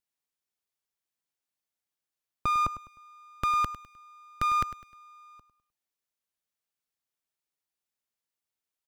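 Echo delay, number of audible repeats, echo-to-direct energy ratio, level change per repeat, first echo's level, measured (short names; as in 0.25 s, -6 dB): 0.102 s, 3, -13.5 dB, -9.0 dB, -14.0 dB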